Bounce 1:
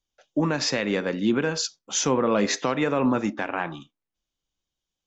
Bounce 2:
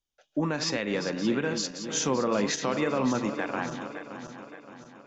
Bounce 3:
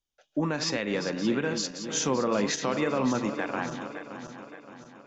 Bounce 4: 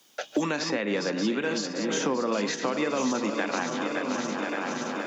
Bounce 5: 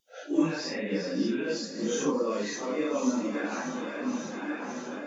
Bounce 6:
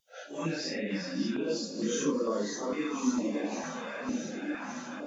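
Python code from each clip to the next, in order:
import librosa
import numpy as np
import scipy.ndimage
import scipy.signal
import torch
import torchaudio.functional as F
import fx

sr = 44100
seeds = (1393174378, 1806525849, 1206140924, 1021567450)

y1 = fx.reverse_delay_fb(x, sr, ms=285, feedback_pct=69, wet_db=-9.5)
y1 = y1 * librosa.db_to_amplitude(-4.5)
y2 = y1
y3 = scipy.signal.sosfilt(scipy.signal.butter(4, 180.0, 'highpass', fs=sr, output='sos'), y2)
y3 = y3 + 10.0 ** (-14.5 / 20.0) * np.pad(y3, (int(1036 * sr / 1000.0), 0))[:len(y3)]
y3 = fx.band_squash(y3, sr, depth_pct=100)
y4 = fx.phase_scramble(y3, sr, seeds[0], window_ms=200)
y4 = fx.high_shelf(y4, sr, hz=3700.0, db=6.5)
y4 = fx.spectral_expand(y4, sr, expansion=1.5)
y5 = fx.filter_held_notch(y4, sr, hz=2.2, low_hz=320.0, high_hz=2500.0)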